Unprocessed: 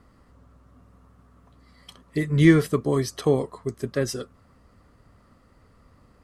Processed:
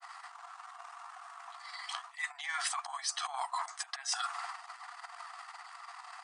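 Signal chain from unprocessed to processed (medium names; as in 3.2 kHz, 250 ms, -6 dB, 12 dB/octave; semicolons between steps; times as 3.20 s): transient shaper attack -11 dB, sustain +10 dB; granulator 100 ms, grains 20 per s, spray 10 ms, pitch spread up and down by 0 st; brick-wall FIR band-pass 680–9900 Hz; reverse; compression 12:1, threshold -50 dBFS, peak gain reduction 26.5 dB; reverse; trim +16.5 dB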